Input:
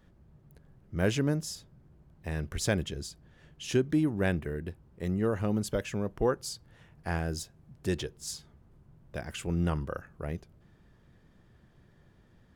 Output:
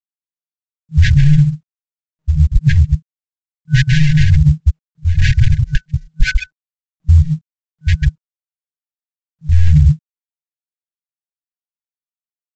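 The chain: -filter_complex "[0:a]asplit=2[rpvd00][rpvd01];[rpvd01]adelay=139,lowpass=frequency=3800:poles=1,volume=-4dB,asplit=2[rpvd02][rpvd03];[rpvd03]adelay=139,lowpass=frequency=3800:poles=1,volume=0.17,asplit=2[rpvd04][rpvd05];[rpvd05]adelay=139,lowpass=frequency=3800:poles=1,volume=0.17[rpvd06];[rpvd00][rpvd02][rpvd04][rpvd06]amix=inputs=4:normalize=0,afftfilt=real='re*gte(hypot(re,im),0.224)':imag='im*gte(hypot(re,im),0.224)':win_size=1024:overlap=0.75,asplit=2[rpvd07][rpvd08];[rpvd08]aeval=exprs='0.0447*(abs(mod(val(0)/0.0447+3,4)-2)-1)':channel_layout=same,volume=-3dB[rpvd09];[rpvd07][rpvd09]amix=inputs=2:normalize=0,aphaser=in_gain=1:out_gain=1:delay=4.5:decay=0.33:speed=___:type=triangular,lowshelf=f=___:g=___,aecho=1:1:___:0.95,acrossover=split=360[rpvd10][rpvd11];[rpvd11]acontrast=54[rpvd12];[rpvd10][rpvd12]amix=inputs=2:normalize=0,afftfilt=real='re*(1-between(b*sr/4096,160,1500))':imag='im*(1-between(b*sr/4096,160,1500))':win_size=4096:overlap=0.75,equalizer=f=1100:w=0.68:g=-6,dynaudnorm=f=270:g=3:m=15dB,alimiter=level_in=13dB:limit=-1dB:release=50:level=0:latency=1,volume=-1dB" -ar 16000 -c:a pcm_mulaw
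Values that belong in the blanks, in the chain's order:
1.1, 120, 6, 4.8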